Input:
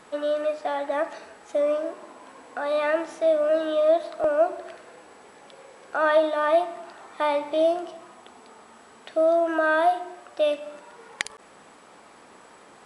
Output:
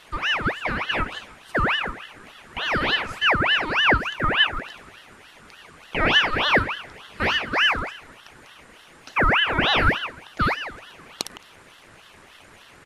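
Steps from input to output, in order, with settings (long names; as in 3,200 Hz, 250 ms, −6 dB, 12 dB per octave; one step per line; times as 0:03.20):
far-end echo of a speakerphone 160 ms, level −13 dB
ring modulator whose carrier an LFO sweeps 1,500 Hz, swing 60%, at 3.4 Hz
level +4 dB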